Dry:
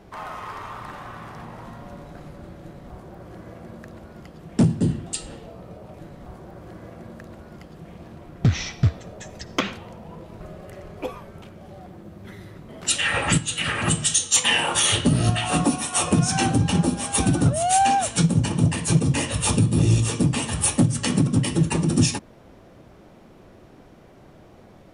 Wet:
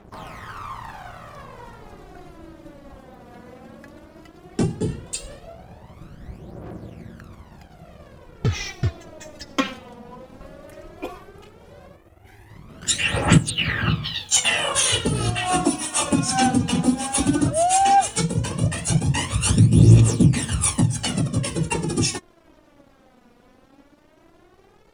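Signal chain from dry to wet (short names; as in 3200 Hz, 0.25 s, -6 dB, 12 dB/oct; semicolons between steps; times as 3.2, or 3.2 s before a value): 11.96–12.5 fixed phaser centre 890 Hz, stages 8; 13.5–14.29 steep low-pass 4700 Hz 72 dB/oct; crossover distortion -51.5 dBFS; phaser 0.15 Hz, delay 4.2 ms, feedback 65%; gain -1.5 dB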